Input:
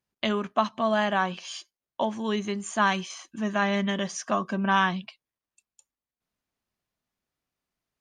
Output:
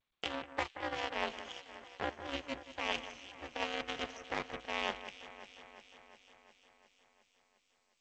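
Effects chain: minimum comb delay 0.33 ms; HPF 230 Hz 24 dB/oct; three-band isolator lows -17 dB, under 300 Hz, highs -12 dB, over 4300 Hz; reverse; compressor 4:1, threshold -36 dBFS, peak gain reduction 13.5 dB; reverse; added harmonics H 6 -38 dB, 7 -18 dB, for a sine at -22 dBFS; ring modulator 140 Hz; on a send: echo with dull and thin repeats by turns 0.178 s, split 2400 Hz, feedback 80%, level -12 dB; on the sum: gain +5.5 dB; G.722 64 kbps 16000 Hz

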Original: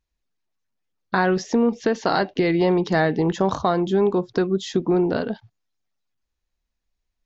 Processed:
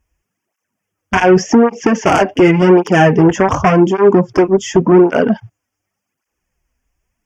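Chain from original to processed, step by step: sine folder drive 8 dB, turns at -6 dBFS; Butterworth band-stop 4000 Hz, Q 1.7; tape flanging out of phase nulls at 0.88 Hz, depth 6.2 ms; gain +4 dB

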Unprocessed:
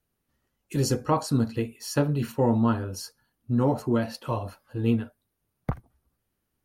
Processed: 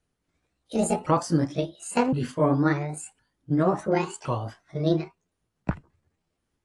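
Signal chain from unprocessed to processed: repeated pitch sweeps +10 st, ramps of 1.063 s; gain +2 dB; AAC 64 kbps 22050 Hz

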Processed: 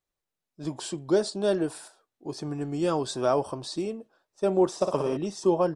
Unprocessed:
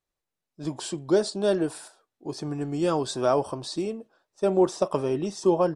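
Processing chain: 4.75–5.17 flutter echo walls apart 9.9 m, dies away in 0.64 s; gain -1.5 dB

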